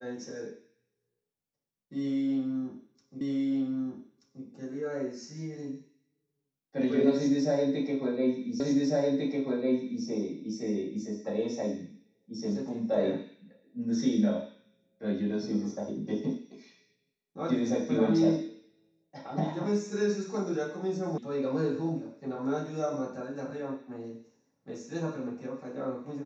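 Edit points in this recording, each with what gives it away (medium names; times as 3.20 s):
3.21 s: repeat of the last 1.23 s
8.60 s: repeat of the last 1.45 s
21.18 s: sound stops dead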